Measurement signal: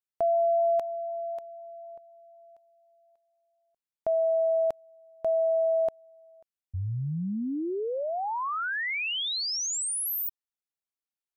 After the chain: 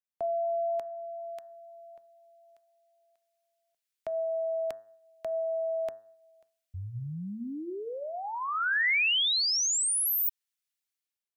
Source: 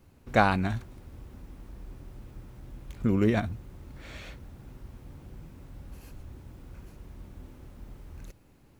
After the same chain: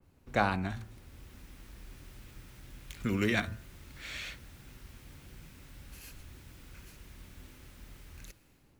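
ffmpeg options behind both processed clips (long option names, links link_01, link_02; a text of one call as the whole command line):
ffmpeg -i in.wav -filter_complex "[0:a]bandreject=frequency=109.8:width_type=h:width=4,bandreject=frequency=219.6:width_type=h:width=4,bandreject=frequency=329.4:width_type=h:width=4,bandreject=frequency=439.2:width_type=h:width=4,bandreject=frequency=549:width_type=h:width=4,bandreject=frequency=658.8:width_type=h:width=4,bandreject=frequency=768.6:width_type=h:width=4,bandreject=frequency=878.4:width_type=h:width=4,bandreject=frequency=988.2:width_type=h:width=4,bandreject=frequency=1098:width_type=h:width=4,bandreject=frequency=1207.8:width_type=h:width=4,bandreject=frequency=1317.6:width_type=h:width=4,bandreject=frequency=1427.4:width_type=h:width=4,bandreject=frequency=1537.2:width_type=h:width=4,bandreject=frequency=1647:width_type=h:width=4,bandreject=frequency=1756.8:width_type=h:width=4,bandreject=frequency=1866.6:width_type=h:width=4,acrossover=split=270|1100|1300[link_01][link_02][link_03][link_04];[link_04]dynaudnorm=framelen=680:gausssize=3:maxgain=13.5dB[link_05];[link_01][link_02][link_03][link_05]amix=inputs=4:normalize=0,adynamicequalizer=threshold=0.0178:dfrequency=2700:dqfactor=0.7:tfrequency=2700:tqfactor=0.7:attack=5:release=100:ratio=0.375:range=2.5:mode=cutabove:tftype=highshelf,volume=-6dB" out.wav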